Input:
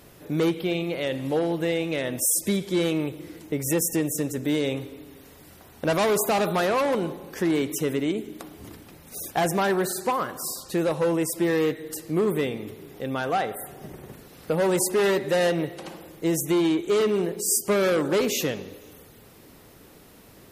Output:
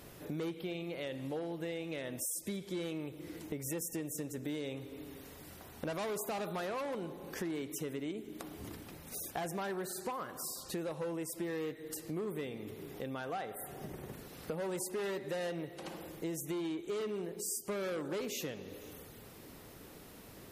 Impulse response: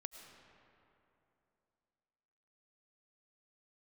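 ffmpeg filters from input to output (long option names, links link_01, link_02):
-af "acompressor=threshold=-38dB:ratio=3,volume=-2.5dB"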